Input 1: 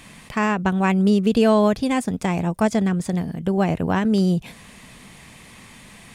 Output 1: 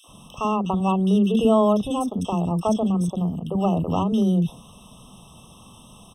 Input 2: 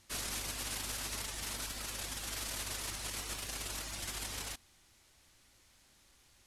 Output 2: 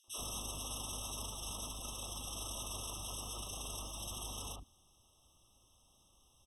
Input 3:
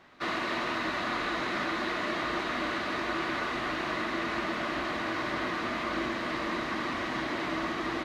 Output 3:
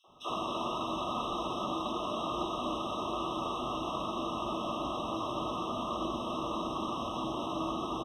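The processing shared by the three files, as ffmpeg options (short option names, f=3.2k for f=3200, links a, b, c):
-filter_complex "[0:a]acrossover=split=330|2300[a][b][c];[b]adelay=40[d];[a]adelay=80[e];[e][d][c]amix=inputs=3:normalize=0,afftfilt=real='re*eq(mod(floor(b*sr/1024/1300),2),0)':imag='im*eq(mod(floor(b*sr/1024/1300),2),0)':win_size=1024:overlap=0.75"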